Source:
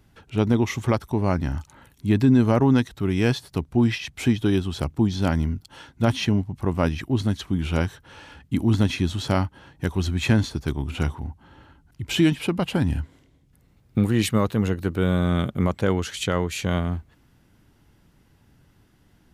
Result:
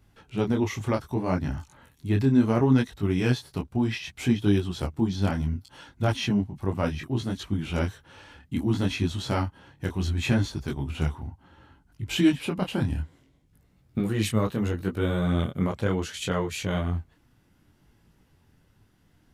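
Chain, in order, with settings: detune thickener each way 23 cents

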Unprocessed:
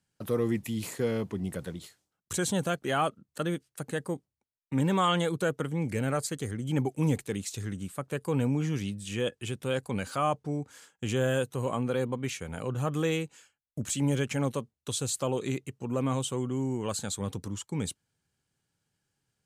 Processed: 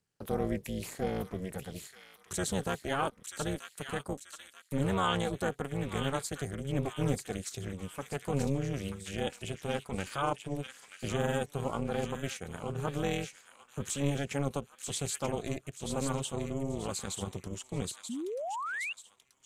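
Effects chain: feedback echo behind a high-pass 934 ms, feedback 41%, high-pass 1.7 kHz, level -5 dB; AM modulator 280 Hz, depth 90%; painted sound rise, 18.09–18.93 s, 220–2900 Hz -36 dBFS

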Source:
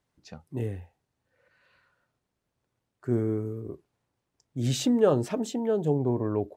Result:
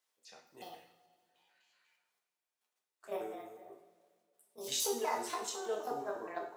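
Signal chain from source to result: pitch shift switched off and on +8.5 st, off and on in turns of 123 ms; high-pass 590 Hz 12 dB/octave; treble shelf 2.5 kHz +10.5 dB; level held to a coarse grid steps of 10 dB; two-slope reverb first 0.51 s, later 2.3 s, from -18 dB, DRR -1 dB; trim -7.5 dB

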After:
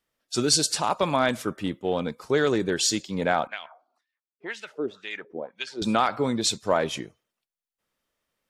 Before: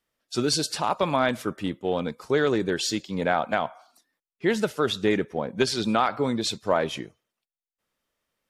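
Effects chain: dynamic bell 7.6 kHz, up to +8 dB, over -45 dBFS, Q 0.98; 3.47–5.82 s: LFO band-pass sine 2 Hz 310–3000 Hz

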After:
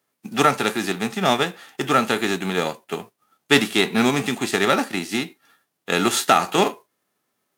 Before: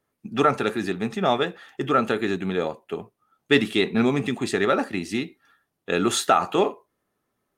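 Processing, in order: formants flattened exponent 0.6; high-pass 150 Hz 12 dB/octave; trim +2.5 dB

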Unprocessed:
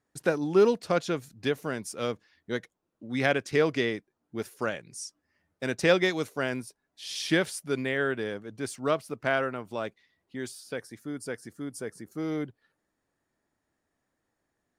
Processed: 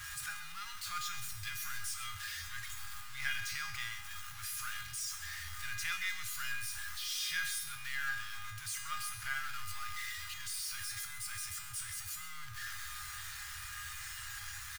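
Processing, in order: jump at every zero crossing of -25.5 dBFS; elliptic band-stop 100–1300 Hz, stop band 80 dB; feedback comb 410 Hz, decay 0.58 s, mix 90%; delay 129 ms -12 dB; trim +6.5 dB

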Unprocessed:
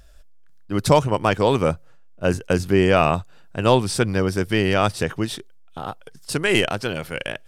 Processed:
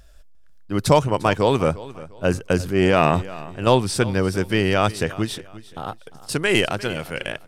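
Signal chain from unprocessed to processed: 2.61–3.67 s: transient shaper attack -8 dB, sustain +7 dB; feedback delay 350 ms, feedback 30%, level -18 dB

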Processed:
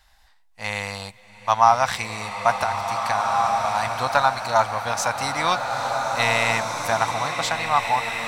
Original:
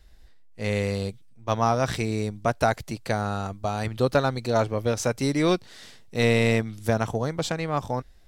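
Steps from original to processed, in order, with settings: resonant low shelf 590 Hz -13 dB, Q 3; 2.52–3.76 s: compression, threshold -27 dBFS, peak gain reduction 11.5 dB; swelling reverb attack 1830 ms, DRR 2.5 dB; trim +4.5 dB

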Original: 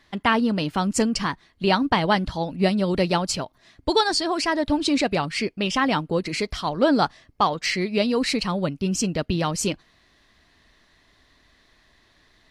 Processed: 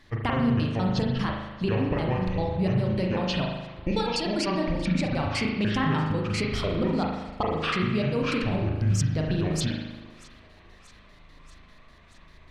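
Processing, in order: pitch shift switched off and on -9 st, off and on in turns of 99 ms; bass shelf 180 Hz +9 dB; compression, threshold -26 dBFS, peak gain reduction 13 dB; on a send: thinning echo 633 ms, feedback 68%, level -22 dB; on the sum: spring tank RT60 1.1 s, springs 38 ms, chirp 30 ms, DRR -0.5 dB

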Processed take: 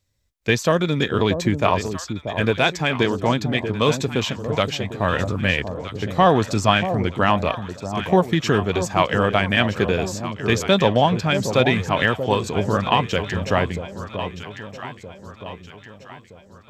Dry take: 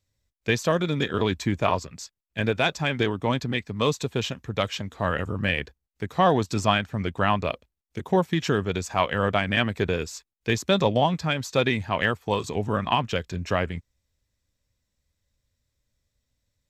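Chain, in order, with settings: on a send: echo whose repeats swap between lows and highs 635 ms, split 840 Hz, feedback 66%, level -8 dB; on the sum: trim +4.5 dB

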